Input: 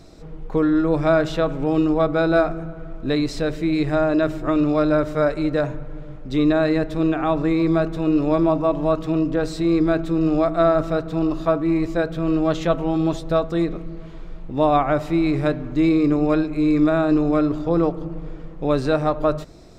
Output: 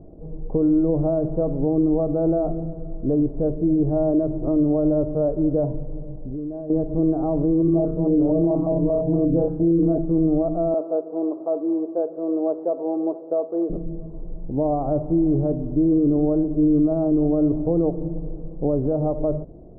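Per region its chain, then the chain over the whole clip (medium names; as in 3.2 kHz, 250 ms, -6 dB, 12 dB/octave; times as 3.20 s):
6.06–6.70 s: band-stop 1.3 kHz, Q 6.2 + compression 20:1, threshold -28 dBFS
7.62–9.98 s: flutter echo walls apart 5.1 m, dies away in 0.54 s + step-sequenced notch 8.6 Hz 580–3300 Hz
10.74–13.70 s: CVSD coder 32 kbps + high-pass 360 Hz 24 dB/octave
whole clip: peak limiter -14 dBFS; inverse Chebyshev low-pass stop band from 2.3 kHz, stop band 60 dB; trim +2.5 dB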